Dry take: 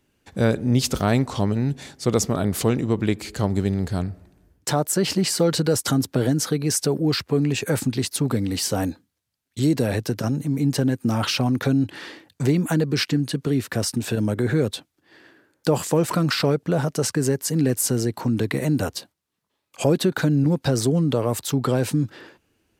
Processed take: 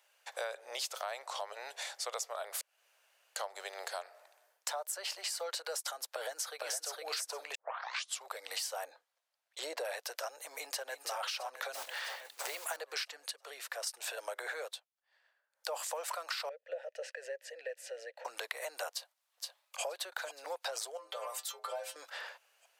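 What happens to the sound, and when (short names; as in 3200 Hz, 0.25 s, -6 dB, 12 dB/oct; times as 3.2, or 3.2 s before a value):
2.61–3.36 room tone
6.12–6.98 echo throw 0.46 s, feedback 15%, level -2 dB
7.55 tape start 0.74 s
8.84–9.85 tilt -3 dB/oct
10.52–11.16 echo throw 0.33 s, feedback 65%, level -7.5 dB
11.74–12.77 block floating point 5-bit
13.31–13.87 gain -9 dB
14.52–15.79 dip -22.5 dB, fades 0.28 s
16.49–18.25 vowel filter e
18.9–19.84 echo throw 0.47 s, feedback 50%, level -9 dB
20.97–21.96 metallic resonator 77 Hz, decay 0.36 s, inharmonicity 0.008
whole clip: steep high-pass 560 Hz 48 dB/oct; compressor 6:1, threshold -39 dBFS; gain +2 dB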